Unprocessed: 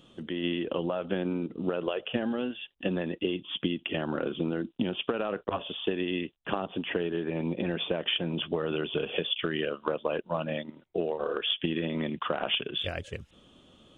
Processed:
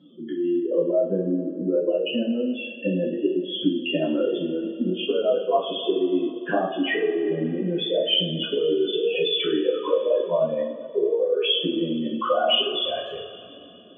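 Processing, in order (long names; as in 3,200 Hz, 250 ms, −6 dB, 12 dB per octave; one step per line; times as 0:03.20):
expanding power law on the bin magnitudes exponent 3
low-pass filter 3,200 Hz 12 dB per octave
tape wow and flutter 17 cents
high-pass filter 330 Hz 12 dB per octave
coupled-rooms reverb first 0.4 s, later 3.1 s, from −18 dB, DRR −7.5 dB
level +3 dB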